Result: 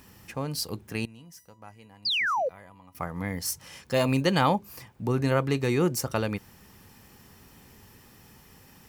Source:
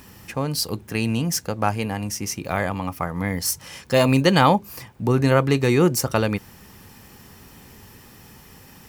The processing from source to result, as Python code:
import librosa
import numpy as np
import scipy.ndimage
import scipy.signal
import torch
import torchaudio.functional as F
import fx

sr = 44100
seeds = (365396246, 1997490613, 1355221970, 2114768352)

y = fx.comb_fb(x, sr, f0_hz=990.0, decay_s=0.33, harmonics='all', damping=0.0, mix_pct=90, at=(1.05, 2.95))
y = fx.spec_paint(y, sr, seeds[0], shape='fall', start_s=2.05, length_s=0.44, low_hz=470.0, high_hz=5100.0, level_db=-19.0)
y = F.gain(torch.from_numpy(y), -7.0).numpy()